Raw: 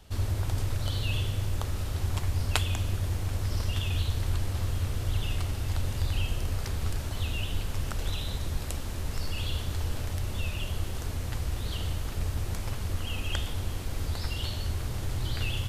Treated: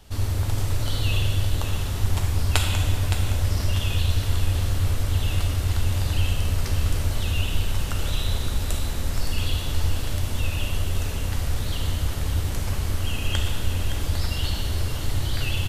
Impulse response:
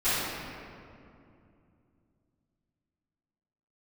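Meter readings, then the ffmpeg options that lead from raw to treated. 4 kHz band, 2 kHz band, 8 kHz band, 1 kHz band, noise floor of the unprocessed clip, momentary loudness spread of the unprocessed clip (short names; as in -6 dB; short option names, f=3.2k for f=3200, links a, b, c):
+6.5 dB, +6.0 dB, +7.0 dB, +5.5 dB, -35 dBFS, 4 LU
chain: -filter_complex "[0:a]aecho=1:1:566:0.355,asplit=2[a][b];[1:a]atrim=start_sample=2205,asetrate=34839,aresample=44100,highshelf=f=3.3k:g=10.5[c];[b][c]afir=irnorm=-1:irlink=0,volume=-19dB[d];[a][d]amix=inputs=2:normalize=0,volume=2.5dB"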